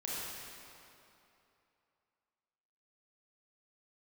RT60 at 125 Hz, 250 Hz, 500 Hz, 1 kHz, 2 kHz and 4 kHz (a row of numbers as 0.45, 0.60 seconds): 2.7, 2.7, 2.8, 2.9, 2.5, 2.2 seconds